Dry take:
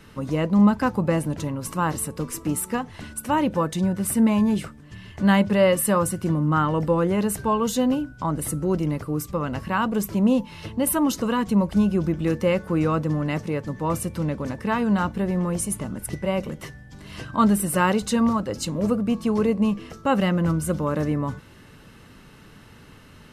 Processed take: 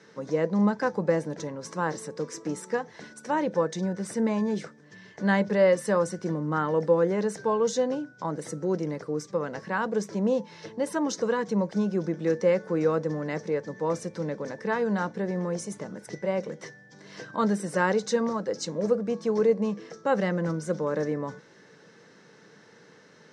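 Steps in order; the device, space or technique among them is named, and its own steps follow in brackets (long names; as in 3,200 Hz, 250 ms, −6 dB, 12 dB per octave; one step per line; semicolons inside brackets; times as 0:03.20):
television speaker (loudspeaker in its box 170–6,900 Hz, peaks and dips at 250 Hz −8 dB, 470 Hz +8 dB, 1,200 Hz −5 dB, 1,700 Hz +5 dB, 2,800 Hz −10 dB, 5,800 Hz +7 dB)
level −4 dB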